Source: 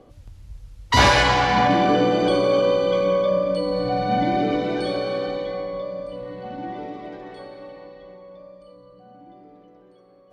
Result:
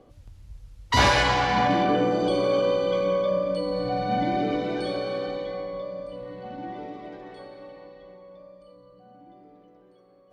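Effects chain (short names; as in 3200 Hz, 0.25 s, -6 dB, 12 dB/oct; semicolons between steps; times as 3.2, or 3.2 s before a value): 1.82–2.37 bell 8800 Hz -> 1400 Hz -7.5 dB 0.87 oct; gain -4 dB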